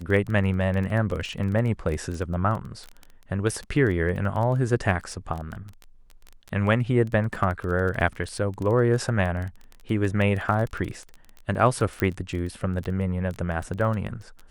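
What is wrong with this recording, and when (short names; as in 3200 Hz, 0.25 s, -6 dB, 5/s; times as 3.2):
crackle 16/s -29 dBFS
12 pop -11 dBFS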